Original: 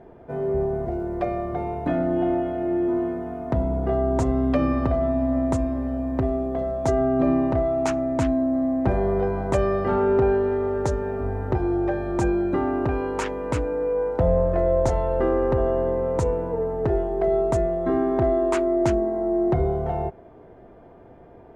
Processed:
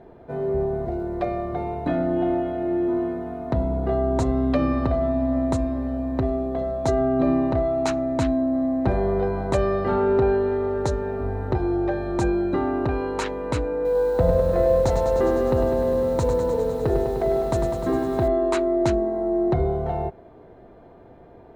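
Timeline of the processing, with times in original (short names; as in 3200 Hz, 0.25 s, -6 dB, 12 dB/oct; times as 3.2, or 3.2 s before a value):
13.75–18.28 lo-fi delay 0.101 s, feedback 80%, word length 8-bit, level -7 dB
whole clip: bell 4000 Hz +11 dB 0.22 oct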